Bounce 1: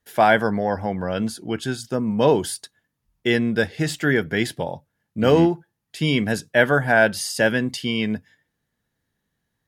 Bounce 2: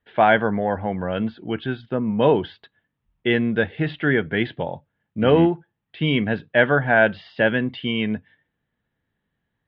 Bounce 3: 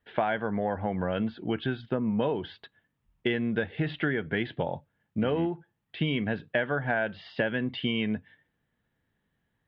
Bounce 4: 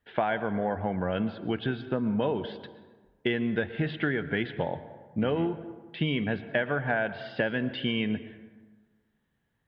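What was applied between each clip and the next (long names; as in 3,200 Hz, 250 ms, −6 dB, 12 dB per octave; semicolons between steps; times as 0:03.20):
Butterworth low-pass 3,500 Hz 48 dB per octave
downward compressor 10 to 1, threshold −24 dBFS, peak gain reduction 14 dB
dense smooth reverb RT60 1.4 s, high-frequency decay 0.5×, pre-delay 105 ms, DRR 13 dB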